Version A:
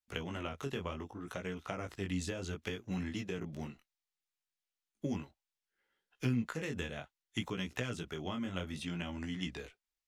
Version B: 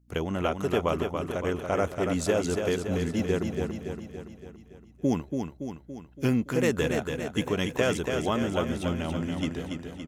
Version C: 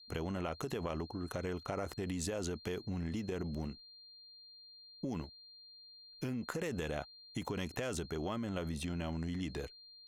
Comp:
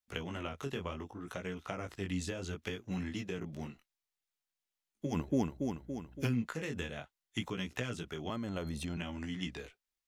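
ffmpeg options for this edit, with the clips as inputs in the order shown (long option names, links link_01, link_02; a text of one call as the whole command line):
ffmpeg -i take0.wav -i take1.wav -i take2.wav -filter_complex "[0:a]asplit=3[link_01][link_02][link_03];[link_01]atrim=end=5.19[link_04];[1:a]atrim=start=5.09:end=6.3[link_05];[link_02]atrim=start=6.2:end=8.302[link_06];[2:a]atrim=start=8.298:end=8.972[link_07];[link_03]atrim=start=8.968[link_08];[link_04][link_05]acrossfade=duration=0.1:curve1=tri:curve2=tri[link_09];[link_09][link_06]acrossfade=duration=0.1:curve1=tri:curve2=tri[link_10];[link_10][link_07]acrossfade=duration=0.004:curve1=hsin:curve2=hsin[link_11];[link_11][link_08]acrossfade=duration=0.004:curve1=hsin:curve2=hsin" out.wav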